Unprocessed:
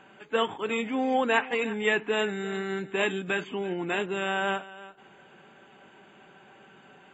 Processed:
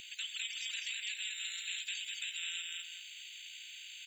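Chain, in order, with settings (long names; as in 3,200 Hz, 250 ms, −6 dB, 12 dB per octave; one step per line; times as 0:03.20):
Butterworth high-pass 2,700 Hz 48 dB per octave
in parallel at +1.5 dB: downward compressor, threshold −45 dBFS, peak gain reduction 13.5 dB
on the sum: brickwall limiter −28.5 dBFS, peak gain reduction 9 dB
time stretch by overlap-add 0.57×, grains 35 ms
single-tap delay 206 ms −3.5 dB
on a send at −12.5 dB: convolution reverb RT60 0.45 s, pre-delay 6 ms
on the sum: every bin compressed towards the loudest bin 2 to 1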